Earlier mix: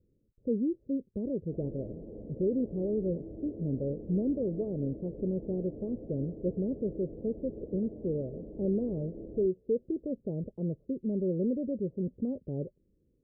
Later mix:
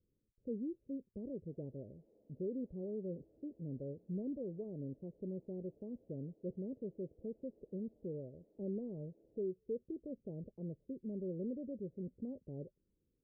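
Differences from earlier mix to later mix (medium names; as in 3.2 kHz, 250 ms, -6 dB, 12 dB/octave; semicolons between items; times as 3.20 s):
speech -11.0 dB; background: add differentiator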